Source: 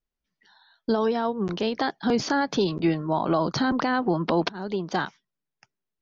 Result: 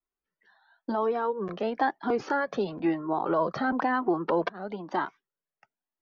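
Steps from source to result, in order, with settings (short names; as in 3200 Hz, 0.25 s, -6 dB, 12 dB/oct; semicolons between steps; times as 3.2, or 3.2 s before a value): three-band isolator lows -15 dB, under 240 Hz, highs -18 dB, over 2200 Hz; cascading flanger rising 1 Hz; gain +4 dB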